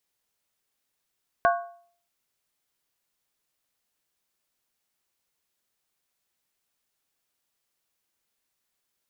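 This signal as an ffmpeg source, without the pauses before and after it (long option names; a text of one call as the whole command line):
ffmpeg -f lavfi -i "aevalsrc='0.158*pow(10,-3*t/0.53)*sin(2*PI*692*t)+0.106*pow(10,-3*t/0.42)*sin(2*PI*1103*t)+0.0708*pow(10,-3*t/0.363)*sin(2*PI*1478.1*t)+0.0473*pow(10,-3*t/0.35)*sin(2*PI*1588.8*t)':duration=0.63:sample_rate=44100" out.wav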